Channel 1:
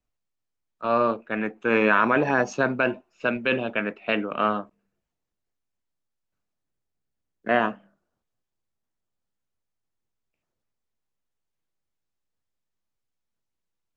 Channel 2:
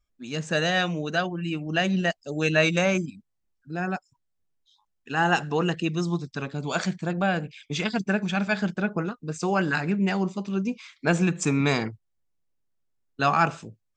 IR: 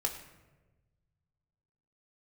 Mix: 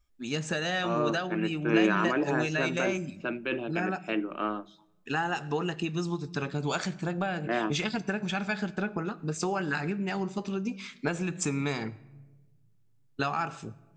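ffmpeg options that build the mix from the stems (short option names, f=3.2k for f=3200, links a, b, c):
-filter_complex "[0:a]equalizer=f=330:t=o:w=0.23:g=15,bandreject=f=50:t=h:w=6,bandreject=f=100:t=h:w=6,bandreject=f=150:t=h:w=6,bandreject=f=200:t=h:w=6,volume=-9.5dB,asplit=2[a][b];[b]volume=-22dB[c];[1:a]acompressor=threshold=-29dB:ratio=10,volume=1dB,asplit=2[d][e];[e]volume=-11.5dB[f];[2:a]atrim=start_sample=2205[g];[c][f]amix=inputs=2:normalize=0[h];[h][g]afir=irnorm=-1:irlink=0[i];[a][d][i]amix=inputs=3:normalize=0,bandreject=f=490:w=12"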